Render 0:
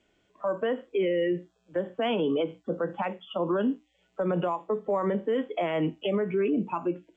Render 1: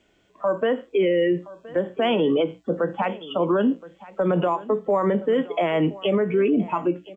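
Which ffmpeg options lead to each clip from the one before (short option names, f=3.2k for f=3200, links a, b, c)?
-af "aecho=1:1:1021:0.112,volume=6dB"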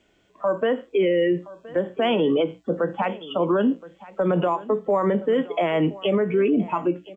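-af anull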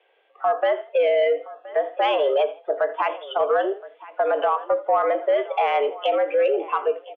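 -filter_complex "[0:a]highpass=f=310:t=q:w=0.5412,highpass=f=310:t=q:w=1.307,lowpass=f=3.1k:t=q:w=0.5176,lowpass=f=3.1k:t=q:w=0.7071,lowpass=f=3.1k:t=q:w=1.932,afreqshift=120,asplit=4[a][b][c][d];[b]adelay=81,afreqshift=32,volume=-19dB[e];[c]adelay=162,afreqshift=64,volume=-28.9dB[f];[d]adelay=243,afreqshift=96,volume=-38.8dB[g];[a][e][f][g]amix=inputs=4:normalize=0,acontrast=84,volume=-5dB"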